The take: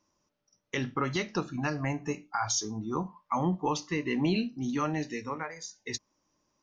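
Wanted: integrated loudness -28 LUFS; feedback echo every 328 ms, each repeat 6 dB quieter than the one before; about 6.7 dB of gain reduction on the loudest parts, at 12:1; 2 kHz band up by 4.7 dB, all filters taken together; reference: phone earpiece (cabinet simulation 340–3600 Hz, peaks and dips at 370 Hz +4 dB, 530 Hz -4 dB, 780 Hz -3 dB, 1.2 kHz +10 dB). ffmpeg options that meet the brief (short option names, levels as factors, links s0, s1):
-af "equalizer=f=2000:t=o:g=4.5,acompressor=threshold=0.0316:ratio=12,highpass=340,equalizer=f=370:t=q:w=4:g=4,equalizer=f=530:t=q:w=4:g=-4,equalizer=f=780:t=q:w=4:g=-3,equalizer=f=1200:t=q:w=4:g=10,lowpass=f=3600:w=0.5412,lowpass=f=3600:w=1.3066,aecho=1:1:328|656|984|1312|1640|1968:0.501|0.251|0.125|0.0626|0.0313|0.0157,volume=2.11"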